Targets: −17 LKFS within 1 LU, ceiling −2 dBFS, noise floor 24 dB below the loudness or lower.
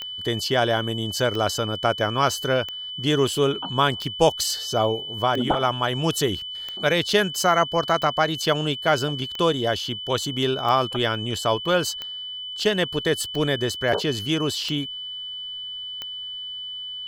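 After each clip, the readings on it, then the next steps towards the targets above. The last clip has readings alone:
number of clicks 13; interfering tone 3,000 Hz; level of the tone −31 dBFS; integrated loudness −23.5 LKFS; sample peak −4.5 dBFS; target loudness −17.0 LKFS
→ click removal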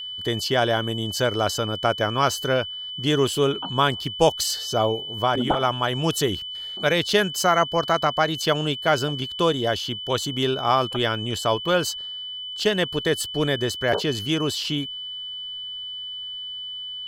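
number of clicks 0; interfering tone 3,000 Hz; level of the tone −31 dBFS
→ notch filter 3,000 Hz, Q 30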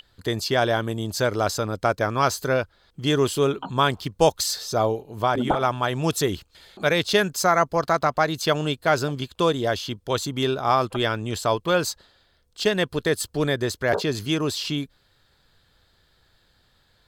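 interfering tone none found; integrated loudness −23.5 LKFS; sample peak −5.0 dBFS; target loudness −17.0 LKFS
→ level +6.5 dB
brickwall limiter −2 dBFS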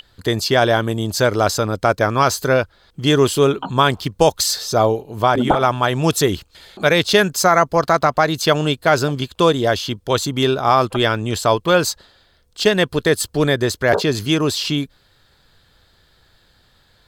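integrated loudness −17.5 LKFS; sample peak −2.0 dBFS; background noise floor −57 dBFS

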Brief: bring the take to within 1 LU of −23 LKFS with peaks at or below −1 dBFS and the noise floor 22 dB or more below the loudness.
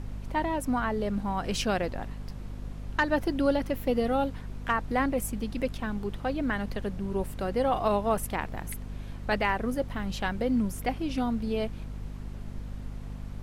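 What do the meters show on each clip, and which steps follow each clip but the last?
mains hum 50 Hz; hum harmonics up to 250 Hz; level of the hum −36 dBFS; background noise floor −41 dBFS; target noise floor −52 dBFS; integrated loudness −30.0 LKFS; sample peak −12.5 dBFS; target loudness −23.0 LKFS
→ mains-hum notches 50/100/150/200/250 Hz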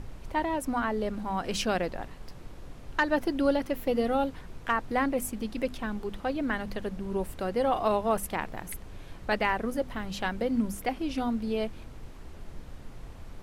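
mains hum none found; background noise floor −46 dBFS; target noise floor −53 dBFS
→ noise reduction from a noise print 7 dB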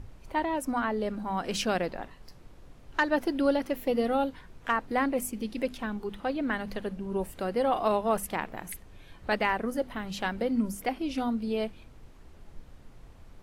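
background noise floor −52 dBFS; target noise floor −53 dBFS
→ noise reduction from a noise print 6 dB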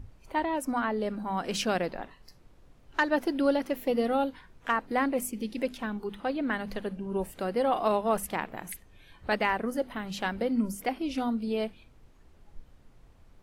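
background noise floor −58 dBFS; integrated loudness −30.5 LKFS; sample peak −13.0 dBFS; target loudness −23.0 LKFS
→ level +7.5 dB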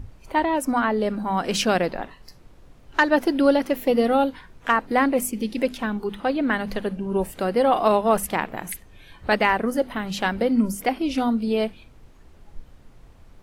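integrated loudness −23.0 LKFS; sample peak −5.5 dBFS; background noise floor −50 dBFS

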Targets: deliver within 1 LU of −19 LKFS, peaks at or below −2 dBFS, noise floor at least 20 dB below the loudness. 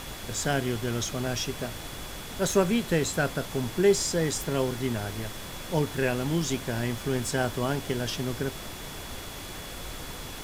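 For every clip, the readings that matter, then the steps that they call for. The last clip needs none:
interfering tone 3,400 Hz; level of the tone −48 dBFS; background noise floor −40 dBFS; target noise floor −49 dBFS; integrated loudness −29.0 LKFS; sample peak −10.0 dBFS; target loudness −19.0 LKFS
→ notch filter 3,400 Hz, Q 30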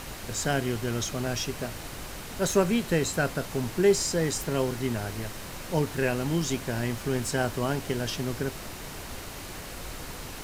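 interfering tone none found; background noise floor −40 dBFS; target noise floor −50 dBFS
→ noise reduction from a noise print 10 dB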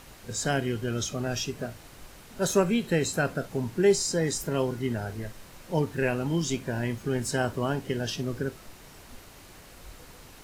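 background noise floor −50 dBFS; integrated loudness −28.5 LKFS; sample peak −10.0 dBFS; target loudness −19.0 LKFS
→ level +9.5 dB
brickwall limiter −2 dBFS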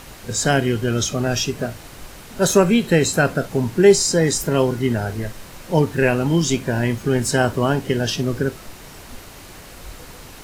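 integrated loudness −19.0 LKFS; sample peak −2.0 dBFS; background noise floor −40 dBFS

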